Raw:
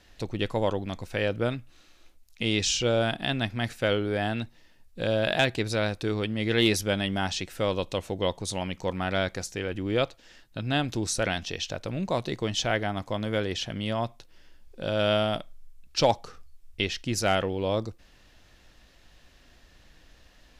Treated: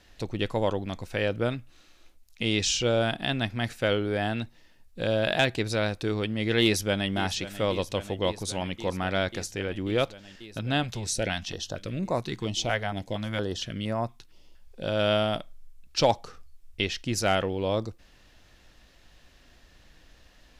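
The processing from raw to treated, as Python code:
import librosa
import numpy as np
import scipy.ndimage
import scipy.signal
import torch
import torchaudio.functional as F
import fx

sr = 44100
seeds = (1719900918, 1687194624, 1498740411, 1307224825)

y = fx.echo_throw(x, sr, start_s=6.62, length_s=0.49, ms=540, feedback_pct=85, wet_db=-14.0)
y = fx.filter_held_notch(y, sr, hz=4.3, low_hz=300.0, high_hz=3200.0, at=(10.83, 14.84))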